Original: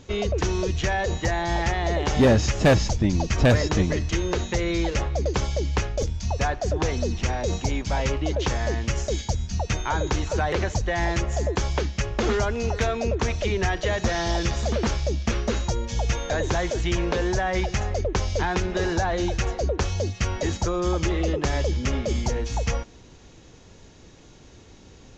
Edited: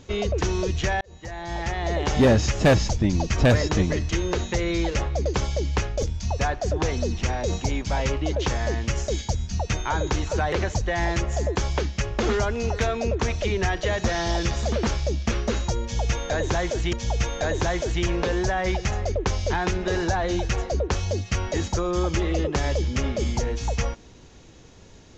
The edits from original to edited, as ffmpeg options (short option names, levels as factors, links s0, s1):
-filter_complex "[0:a]asplit=3[s0][s1][s2];[s0]atrim=end=1.01,asetpts=PTS-STARTPTS,afade=t=out:st=1.006:d=0.004:c=hsin[s3];[s1]atrim=start=1.01:end=16.932,asetpts=PTS-STARTPTS,afade=t=in:d=1.04[s4];[s2]atrim=start=15.818[s5];[s3][s4]concat=n=2:v=0:a=1[s6];[s6][s5]acrossfade=d=0.004:c1=hsin:c2=hsin"